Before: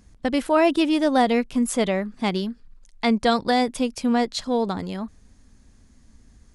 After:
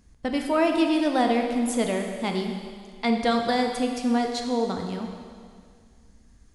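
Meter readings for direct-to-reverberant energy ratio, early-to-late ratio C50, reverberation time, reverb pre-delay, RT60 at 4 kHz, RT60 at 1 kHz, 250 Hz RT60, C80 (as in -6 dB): 3.0 dB, 4.5 dB, 2.0 s, 12 ms, 2.0 s, 2.0 s, 2.0 s, 5.5 dB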